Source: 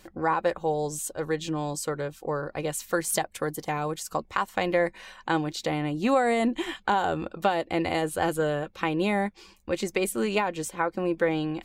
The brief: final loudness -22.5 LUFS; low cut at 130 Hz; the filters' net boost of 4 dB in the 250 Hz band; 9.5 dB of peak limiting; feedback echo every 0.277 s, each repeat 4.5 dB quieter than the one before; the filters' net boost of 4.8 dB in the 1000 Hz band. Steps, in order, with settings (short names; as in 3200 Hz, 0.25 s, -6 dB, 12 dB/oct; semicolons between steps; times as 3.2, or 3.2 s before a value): HPF 130 Hz; bell 250 Hz +5.5 dB; bell 1000 Hz +6 dB; limiter -15.5 dBFS; feedback echo 0.277 s, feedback 60%, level -4.5 dB; gain +3 dB